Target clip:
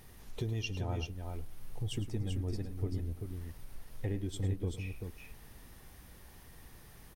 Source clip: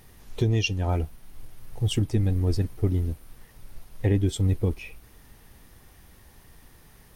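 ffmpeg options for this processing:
-filter_complex "[0:a]acompressor=threshold=-38dB:ratio=2,asplit=2[a][b];[b]aecho=0:1:106|387:0.211|0.531[c];[a][c]amix=inputs=2:normalize=0,volume=-3dB"

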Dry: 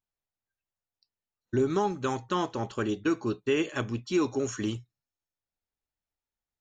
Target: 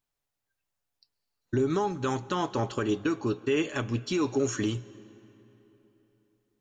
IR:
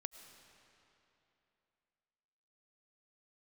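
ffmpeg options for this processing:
-filter_complex "[0:a]alimiter=level_in=0.5dB:limit=-24dB:level=0:latency=1:release=261,volume=-0.5dB,asplit=2[a][b];[1:a]atrim=start_sample=2205,asetrate=37926,aresample=44100,adelay=7[c];[b][c]afir=irnorm=-1:irlink=0,volume=-8.5dB[d];[a][d]amix=inputs=2:normalize=0,volume=6dB"

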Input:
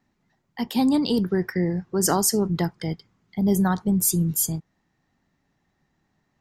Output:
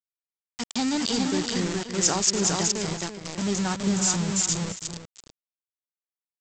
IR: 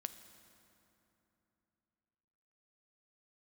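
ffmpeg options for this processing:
-filter_complex "[0:a]asplit=2[a][b];[b]aecho=0:1:417:0.708[c];[a][c]amix=inputs=2:normalize=0,aeval=exprs='val(0)+0.00158*(sin(2*PI*50*n/s)+sin(2*PI*2*50*n/s)/2+sin(2*PI*3*50*n/s)/3+sin(2*PI*4*50*n/s)/4+sin(2*PI*5*50*n/s)/5)':c=same,aresample=16000,aeval=exprs='val(0)*gte(abs(val(0)),0.0596)':c=same,aresample=44100,crystalizer=i=4:c=0,asplit=2[d][e];[e]adelay=332.4,volume=-9dB,highshelf=f=4k:g=-7.48[f];[d][f]amix=inputs=2:normalize=0,volume=-6.5dB"

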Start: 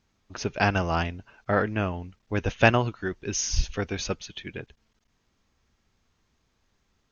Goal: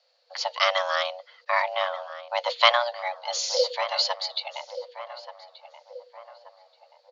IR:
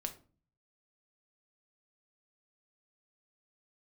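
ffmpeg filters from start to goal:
-filter_complex "[0:a]lowpass=f=4k:t=q:w=9.6,afreqshift=470,acrossover=split=170[a][b];[a]acrusher=samples=31:mix=1:aa=0.000001:lfo=1:lforange=31:lforate=2[c];[c][b]amix=inputs=2:normalize=0,asplit=2[d][e];[e]adelay=1180,lowpass=f=1.4k:p=1,volume=-11dB,asplit=2[f][g];[g]adelay=1180,lowpass=f=1.4k:p=1,volume=0.51,asplit=2[h][i];[i]adelay=1180,lowpass=f=1.4k:p=1,volume=0.51,asplit=2[j][k];[k]adelay=1180,lowpass=f=1.4k:p=1,volume=0.51,asplit=2[l][m];[m]adelay=1180,lowpass=f=1.4k:p=1,volume=0.51[n];[d][f][h][j][l][n]amix=inputs=6:normalize=0,volume=-1dB"

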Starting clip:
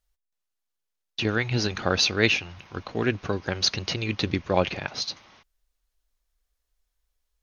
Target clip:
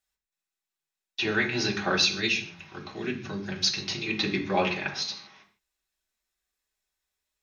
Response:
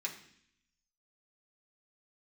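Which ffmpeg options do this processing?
-filter_complex "[0:a]asettb=1/sr,asplit=3[a][b][c];[a]atrim=end=1.964[d];[b]atrim=start=1.96:end=4.06,asetpts=PTS-STARTPTS,afade=t=in:d=0.004:c=qsin,afade=t=out:st=2.096:d=0.004:c=qsin,acrossover=split=280|3000[e][f][g];[f]acompressor=threshold=-38dB:ratio=4[h];[e][h][g]amix=inputs=3:normalize=0[i];[c]atrim=start=4.056[j];[d][i]acrossfade=d=0.004:c1=hsin:c2=qsin[k];[k][j]acrossfade=d=0.004:c1=qsin:c2=hsin[l];[1:a]atrim=start_sample=2205,afade=t=out:st=0.22:d=0.01,atrim=end_sample=10143[m];[l][m]afir=irnorm=-1:irlink=0"

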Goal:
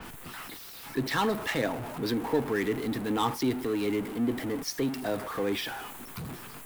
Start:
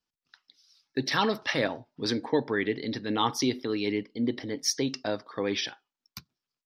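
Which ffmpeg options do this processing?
-filter_complex "[0:a]aeval=exprs='val(0)+0.5*0.0398*sgn(val(0))':c=same,highshelf=f=2.9k:g=-6.5,bandreject=f=570:w=12,acrossover=split=290|7000[a][b][c];[b]adynamicsmooth=sensitivity=5:basefreq=2.4k[d];[a][d][c]amix=inputs=3:normalize=0,adynamicequalizer=threshold=0.00398:dfrequency=5500:dqfactor=0.7:tfrequency=5500:tqfactor=0.7:attack=5:release=100:ratio=0.375:range=2.5:mode=boostabove:tftype=highshelf,volume=-2.5dB"

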